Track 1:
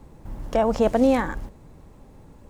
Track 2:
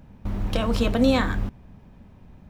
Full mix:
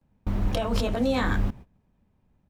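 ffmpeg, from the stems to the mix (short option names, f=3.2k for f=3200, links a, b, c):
-filter_complex "[0:a]highpass=340,volume=-11dB,asplit=2[a][b];[1:a]adelay=14,volume=1.5dB[c];[b]apad=whole_len=110748[d];[c][d]sidechaincompress=threshold=-35dB:ratio=8:attack=6.2:release=136[e];[a][e]amix=inputs=2:normalize=0,agate=range=-20dB:threshold=-39dB:ratio=16:detection=peak"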